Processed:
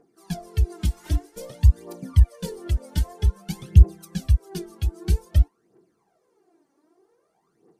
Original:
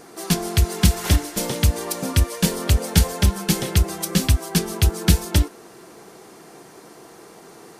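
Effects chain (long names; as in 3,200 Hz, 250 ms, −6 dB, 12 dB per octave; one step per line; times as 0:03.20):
phase shifter 0.52 Hz, delay 3.7 ms, feedback 61%
every bin expanded away from the loudest bin 1.5 to 1
level −2 dB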